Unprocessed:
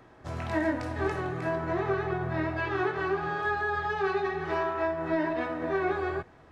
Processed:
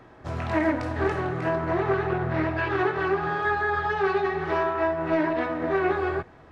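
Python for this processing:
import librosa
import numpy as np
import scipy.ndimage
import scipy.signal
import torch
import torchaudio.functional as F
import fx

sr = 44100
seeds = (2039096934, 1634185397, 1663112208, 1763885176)

y = fx.high_shelf(x, sr, hz=5900.0, db=-6.5)
y = fx.doppler_dist(y, sr, depth_ms=0.2)
y = F.gain(torch.from_numpy(y), 4.5).numpy()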